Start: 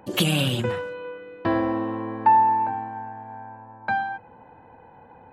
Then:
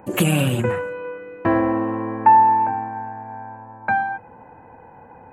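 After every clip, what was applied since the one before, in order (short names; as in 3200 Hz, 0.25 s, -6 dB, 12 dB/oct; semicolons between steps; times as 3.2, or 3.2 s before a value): band shelf 4200 Hz -13.5 dB 1.1 oct; gain +4.5 dB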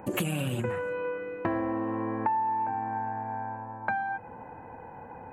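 compressor 5:1, threshold -28 dBFS, peak gain reduction 17 dB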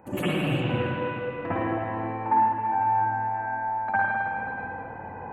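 reverb RT60 2.5 s, pre-delay 53 ms, DRR -14 dB; gain -8 dB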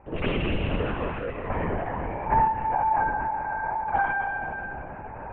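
LPC vocoder at 8 kHz whisper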